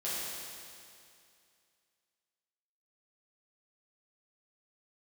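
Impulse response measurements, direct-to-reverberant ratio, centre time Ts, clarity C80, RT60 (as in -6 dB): -10.0 dB, 0.162 s, -1.5 dB, 2.4 s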